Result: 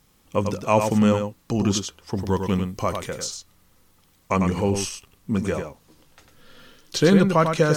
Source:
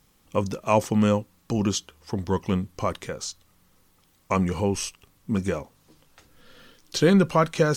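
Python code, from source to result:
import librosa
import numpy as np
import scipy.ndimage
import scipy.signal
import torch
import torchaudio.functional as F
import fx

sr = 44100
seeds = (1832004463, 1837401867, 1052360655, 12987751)

y = fx.high_shelf(x, sr, hz=8600.0, db=8.0, at=(2.15, 3.27))
y = y + 10.0 ** (-6.5 / 20.0) * np.pad(y, (int(99 * sr / 1000.0), 0))[:len(y)]
y = F.gain(torch.from_numpy(y), 1.5).numpy()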